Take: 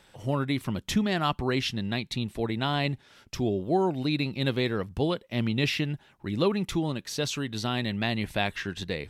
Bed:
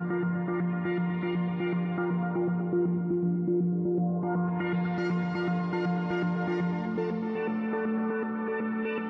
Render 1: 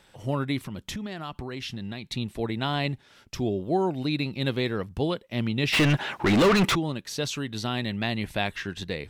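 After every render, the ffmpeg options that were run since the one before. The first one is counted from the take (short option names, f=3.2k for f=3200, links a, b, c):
-filter_complex "[0:a]asettb=1/sr,asplit=3[a][b][c];[a]atrim=end=0.634[d];[b]atrim=start=0.63:end=2.08,asetpts=PTS-STARTPTS,afade=t=in:d=0.004:c=qsin,afade=t=out:st=1.446:d=0.004:c=qsin,acompressor=threshold=-30dB:ratio=12:attack=3.2:release=140:knee=1:detection=peak[e];[c]atrim=start=2.076[f];[d][e]acrossfade=d=0.004:c1=hsin:c2=qsin[g];[g][f]acrossfade=d=0.004:c1=qsin:c2=hsin,asplit=3[h][i][j];[h]afade=t=out:st=5.72:d=0.02[k];[i]asplit=2[l][m];[m]highpass=f=720:p=1,volume=36dB,asoftclip=type=tanh:threshold=-12dB[n];[l][n]amix=inputs=2:normalize=0,lowpass=f=2.5k:p=1,volume=-6dB,afade=t=in:st=5.72:d=0.02,afade=t=out:st=6.74:d=0.02[o];[j]afade=t=in:st=6.74:d=0.02[p];[k][o][p]amix=inputs=3:normalize=0"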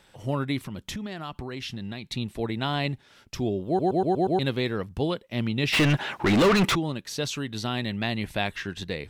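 -filter_complex "[0:a]asplit=7[a][b][c][d][e][f][g];[a]atrim=end=3.792[h];[b]atrim=start=3.668:end=3.792[i];[c]atrim=start=3.668:end=3.792[j];[d]atrim=start=3.668:end=3.792[k];[e]atrim=start=3.668:end=3.792[l];[f]atrim=start=3.668:end=3.792[m];[g]atrim=start=4.388[n];[h][i]acrossfade=d=0.004:c1=hsin:c2=hsin[o];[o][j]acrossfade=d=0.004:c1=hsin:c2=hsin[p];[p][k]acrossfade=d=0.004:c1=hsin:c2=hsin[q];[q][l]acrossfade=d=0.004:c1=hsin:c2=hsin[r];[r][m]acrossfade=d=0.004:c1=hsin:c2=hsin[s];[s][n]acrossfade=d=0.004:c1=hsin:c2=hsin"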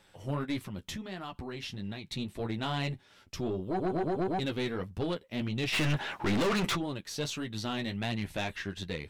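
-af "flanger=delay=9.3:depth=4.2:regen=-24:speed=1.6:shape=triangular,aeval=exprs='(tanh(17.8*val(0)+0.3)-tanh(0.3))/17.8':c=same"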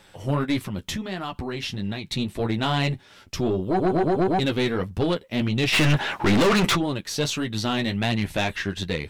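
-af "volume=9.5dB"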